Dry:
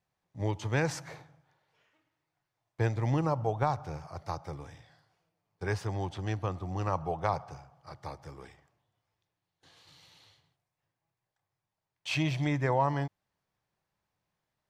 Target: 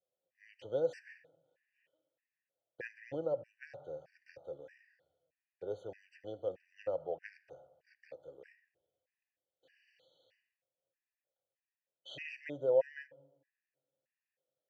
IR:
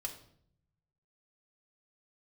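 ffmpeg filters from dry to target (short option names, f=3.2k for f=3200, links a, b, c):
-filter_complex "[0:a]asplit=3[a][b][c];[a]bandpass=f=530:t=q:w=8,volume=0dB[d];[b]bandpass=f=1.84k:t=q:w=8,volume=-6dB[e];[c]bandpass=f=2.48k:t=q:w=8,volume=-9dB[f];[d][e][f]amix=inputs=3:normalize=0,asplit=2[g][h];[1:a]atrim=start_sample=2205,asetrate=22932,aresample=44100[i];[h][i]afir=irnorm=-1:irlink=0,volume=-17dB[j];[g][j]amix=inputs=2:normalize=0,afftfilt=real='re*gt(sin(2*PI*1.6*pts/sr)*(1-2*mod(floor(b*sr/1024/1500),2)),0)':imag='im*gt(sin(2*PI*1.6*pts/sr)*(1-2*mod(floor(b*sr/1024/1500),2)),0)':win_size=1024:overlap=0.75,volume=5dB"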